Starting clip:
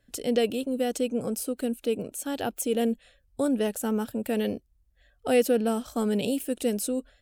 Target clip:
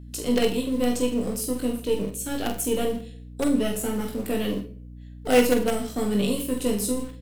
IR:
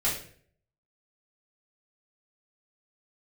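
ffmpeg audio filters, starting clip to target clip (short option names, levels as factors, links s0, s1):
-filter_complex "[0:a]highpass=f=150:w=0.5412,highpass=f=150:w=1.3066,aecho=1:1:20|45|76.25|115.3|164.1:0.631|0.398|0.251|0.158|0.1,acrossover=split=560|1900[s0][s1][s2];[s1]acrusher=bits=5:dc=4:mix=0:aa=0.000001[s3];[s0][s3][s2]amix=inputs=3:normalize=0,asplit=2[s4][s5];[s5]adelay=46,volume=0.355[s6];[s4][s6]amix=inputs=2:normalize=0,asplit=2[s7][s8];[1:a]atrim=start_sample=2205[s9];[s8][s9]afir=irnorm=-1:irlink=0,volume=0.112[s10];[s7][s10]amix=inputs=2:normalize=0,aeval=exprs='val(0)+0.01*(sin(2*PI*60*n/s)+sin(2*PI*2*60*n/s)/2+sin(2*PI*3*60*n/s)/3+sin(2*PI*4*60*n/s)/4+sin(2*PI*5*60*n/s)/5)':c=same"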